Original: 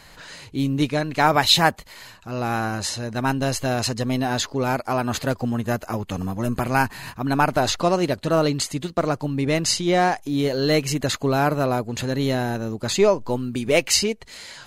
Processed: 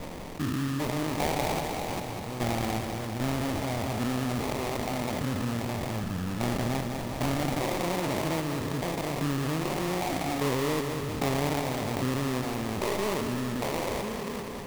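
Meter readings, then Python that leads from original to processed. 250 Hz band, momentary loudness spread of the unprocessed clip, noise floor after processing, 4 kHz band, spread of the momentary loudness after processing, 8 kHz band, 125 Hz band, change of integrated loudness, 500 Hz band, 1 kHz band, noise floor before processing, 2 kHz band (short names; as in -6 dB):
-6.0 dB, 8 LU, -36 dBFS, -12.0 dB, 4 LU, -10.5 dB, -5.5 dB, -8.0 dB, -8.5 dB, -8.5 dB, -47 dBFS, -9.0 dB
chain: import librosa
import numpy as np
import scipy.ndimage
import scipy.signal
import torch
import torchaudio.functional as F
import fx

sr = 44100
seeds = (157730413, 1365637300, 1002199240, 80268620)

p1 = fx.spec_steps(x, sr, hold_ms=400)
p2 = fx.dereverb_blind(p1, sr, rt60_s=1.7)
p3 = scipy.signal.sosfilt(scipy.signal.butter(6, 2900.0, 'lowpass', fs=sr, output='sos'), p2)
p4 = fx.sample_hold(p3, sr, seeds[0], rate_hz=1500.0, jitter_pct=20)
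p5 = p4 + fx.echo_feedback(p4, sr, ms=198, feedback_pct=59, wet_db=-10, dry=0)
p6 = fx.env_flatten(p5, sr, amount_pct=50)
y = F.gain(torch.from_numpy(p6), -4.0).numpy()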